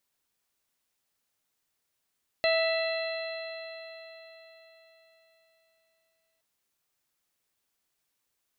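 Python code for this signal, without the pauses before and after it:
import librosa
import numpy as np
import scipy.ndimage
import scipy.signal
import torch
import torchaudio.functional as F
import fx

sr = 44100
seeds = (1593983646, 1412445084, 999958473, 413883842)

y = fx.additive_stiff(sr, length_s=3.97, hz=651.0, level_db=-23.0, upper_db=(-15.0, -6.5, -8, -18.0, -7.0), decay_s=4.2, stiffness=0.0026)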